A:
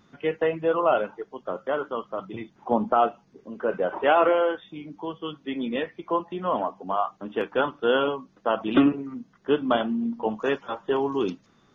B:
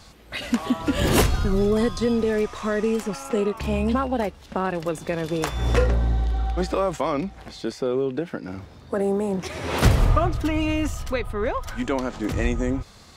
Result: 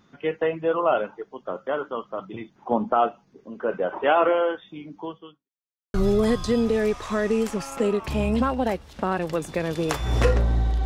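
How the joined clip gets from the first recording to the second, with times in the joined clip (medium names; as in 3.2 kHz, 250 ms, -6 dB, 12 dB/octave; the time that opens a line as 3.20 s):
A
5.05–5.49 s: fade out quadratic
5.49–5.94 s: mute
5.94 s: go over to B from 1.47 s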